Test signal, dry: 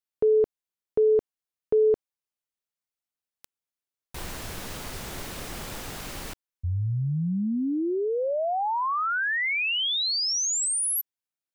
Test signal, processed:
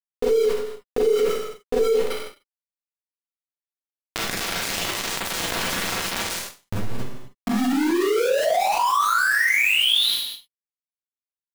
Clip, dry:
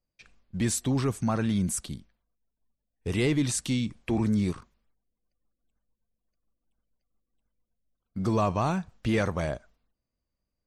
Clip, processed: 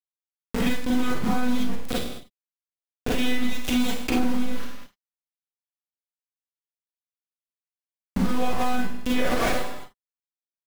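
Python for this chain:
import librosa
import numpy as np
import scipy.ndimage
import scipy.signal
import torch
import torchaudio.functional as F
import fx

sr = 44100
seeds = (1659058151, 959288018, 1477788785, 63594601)

y = fx.recorder_agc(x, sr, target_db=-24.0, rise_db_per_s=7.1, max_gain_db=30)
y = scipy.signal.sosfilt(scipy.signal.butter(2, 110.0, 'highpass', fs=sr, output='sos'), y)
y = fx.high_shelf(y, sr, hz=2300.0, db=5.0)
y = fx.chorus_voices(y, sr, voices=4, hz=0.99, base_ms=29, depth_ms=3.0, mix_pct=30)
y = fx.lpc_monotone(y, sr, seeds[0], pitch_hz=250.0, order=16)
y = y + 10.0 ** (-15.5 / 20.0) * np.pad(y, (int(191 * sr / 1000.0), 0))[:len(y)]
y = np.where(np.abs(y) >= 10.0 ** (-31.5 / 20.0), y, 0.0)
y = fx.rev_schroeder(y, sr, rt60_s=0.31, comb_ms=33, drr_db=-8.0)
y = fx.env_flatten(y, sr, amount_pct=70)
y = y * librosa.db_to_amplitude(-7.0)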